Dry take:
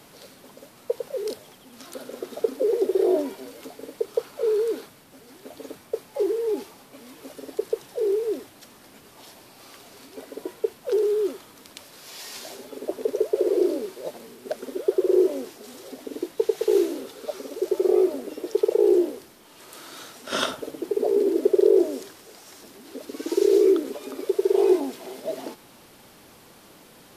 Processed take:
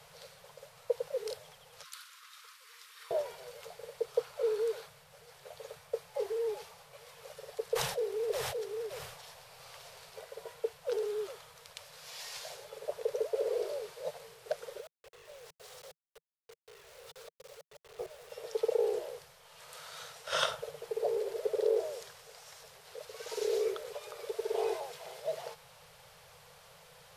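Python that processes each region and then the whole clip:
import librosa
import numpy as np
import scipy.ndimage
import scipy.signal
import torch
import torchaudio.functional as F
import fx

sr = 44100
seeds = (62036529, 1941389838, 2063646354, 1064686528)

y = fx.chain(x, sr, fx.ellip_highpass(hz=1100.0, order=4, stop_db=40),
    fx.band_widen(depth_pct=70), at=(1.83, 3.11))
y = fx.chain(y, sr, fx.echo_single(ms=570, db=-4.0),
    fx.sustainer(db_per_s=65.0), at=(7.71, 10.19))
y = fx.chain(y, sr, fx.auto_swell(attack_ms=329.0),
    fx.level_steps(step_db=22),
    fx.quant_dither(seeds[0], bits=8, dither='none'), at=(14.8, 18.32))
y = scipy.signal.sosfilt(scipy.signal.ellip(3, 1.0, 50, [160.0, 470.0], 'bandstop', fs=sr, output='sos'), y)
y = fx.high_shelf(y, sr, hz=11000.0, db=-8.5)
y = F.gain(torch.from_numpy(y), -4.0).numpy()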